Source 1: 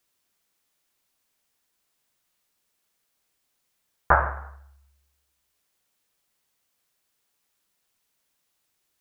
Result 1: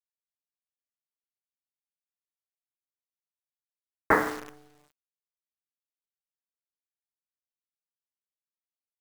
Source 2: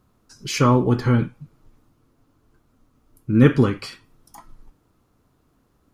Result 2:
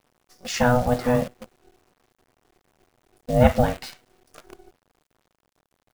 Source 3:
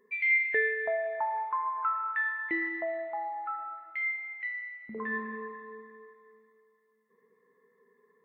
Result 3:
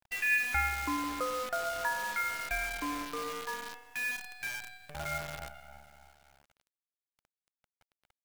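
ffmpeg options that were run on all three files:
-af "aeval=exprs='val(0)*sin(2*PI*370*n/s)':c=same,aresample=22050,aresample=44100,acrusher=bits=7:dc=4:mix=0:aa=0.000001"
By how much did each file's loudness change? -3.0 LU, -3.0 LU, -2.5 LU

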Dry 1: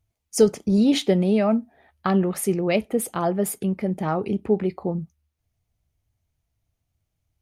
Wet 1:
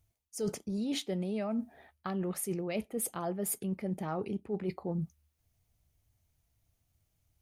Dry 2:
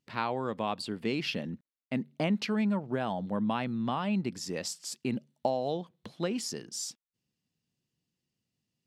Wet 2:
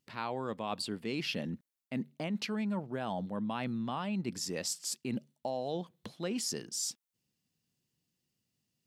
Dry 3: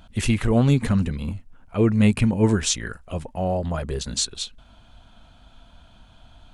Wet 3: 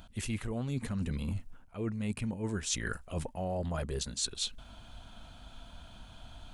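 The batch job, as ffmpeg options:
-af "highshelf=f=6300:g=7,areverse,acompressor=threshold=0.0282:ratio=16,areverse"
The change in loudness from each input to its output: -13.0 LU, -3.5 LU, -13.0 LU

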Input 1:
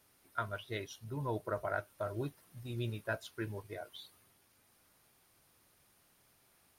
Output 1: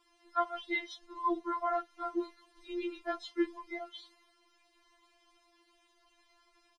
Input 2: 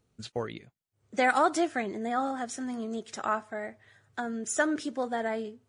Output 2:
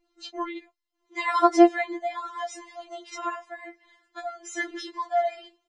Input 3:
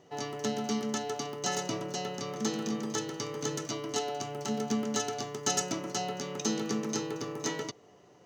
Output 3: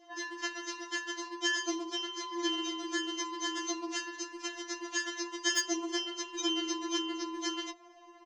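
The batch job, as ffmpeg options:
-filter_complex "[0:a]aecho=1:1:3.9:0.68,acrossover=split=150|6500[s0][s1][s2];[s2]acrusher=bits=3:mix=0:aa=0.000001[s3];[s0][s1][s3]amix=inputs=3:normalize=0,afftfilt=real='re*4*eq(mod(b,16),0)':imag='im*4*eq(mod(b,16),0)':win_size=2048:overlap=0.75,volume=1.88"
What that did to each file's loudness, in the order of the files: +4.0 LU, +5.0 LU, -1.0 LU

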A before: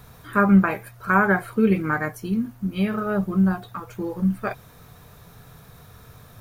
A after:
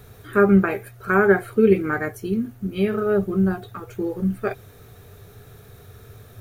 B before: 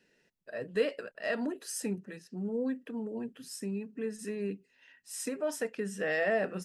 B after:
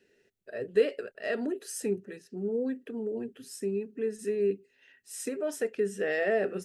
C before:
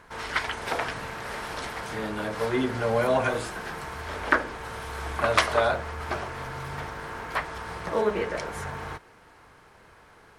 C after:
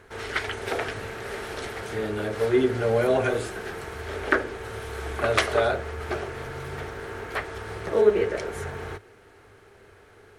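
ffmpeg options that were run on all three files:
-af "equalizer=f=100:t=o:w=0.33:g=9,equalizer=f=160:t=o:w=0.33:g=-6,equalizer=f=400:t=o:w=0.33:g=11,equalizer=f=1000:t=o:w=0.33:g=-9,equalizer=f=5000:t=o:w=0.33:g=-3"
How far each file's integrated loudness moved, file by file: +1.0 LU, +3.0 LU, +1.5 LU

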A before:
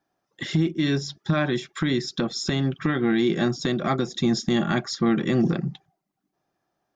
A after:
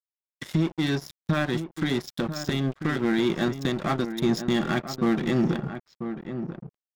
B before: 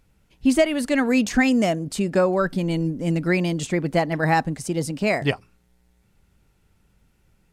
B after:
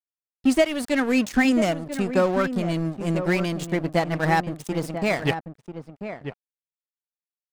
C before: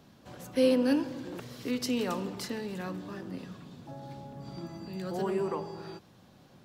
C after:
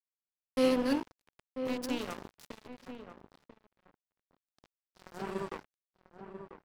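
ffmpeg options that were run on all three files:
-filter_complex "[0:a]aeval=exprs='sgn(val(0))*max(abs(val(0))-0.0266,0)':c=same,asplit=2[s0][s1];[s1]adelay=991.3,volume=0.355,highshelf=f=4000:g=-22.3[s2];[s0][s2]amix=inputs=2:normalize=0"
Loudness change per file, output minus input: -2.5 LU, -1.5 LU, -1.5 LU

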